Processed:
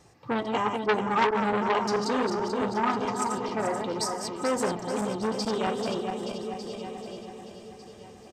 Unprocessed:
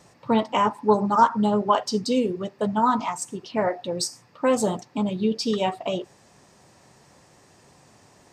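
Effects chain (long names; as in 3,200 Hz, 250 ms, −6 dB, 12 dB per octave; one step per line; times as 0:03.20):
feedback delay that plays each chunk backwards 218 ms, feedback 73%, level −5.5 dB
low-shelf EQ 210 Hz +6 dB
comb filter 2.5 ms, depth 39%
repeating echo 1,199 ms, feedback 29%, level −14 dB
saturating transformer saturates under 1,900 Hz
level −4.5 dB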